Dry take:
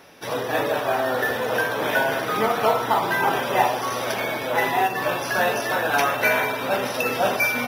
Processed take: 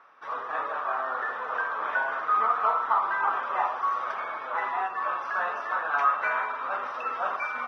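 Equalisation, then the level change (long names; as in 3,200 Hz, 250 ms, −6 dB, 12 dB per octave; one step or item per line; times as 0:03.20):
resonant band-pass 1,200 Hz, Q 6
high-frequency loss of the air 51 metres
+5.5 dB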